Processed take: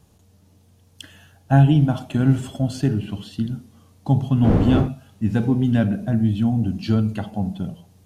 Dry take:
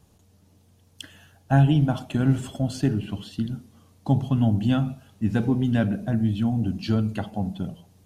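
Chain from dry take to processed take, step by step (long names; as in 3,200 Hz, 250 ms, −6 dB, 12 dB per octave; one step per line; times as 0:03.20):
0:04.43–0:04.87: wind on the microphone 270 Hz −16 dBFS
harmonic and percussive parts rebalanced harmonic +4 dB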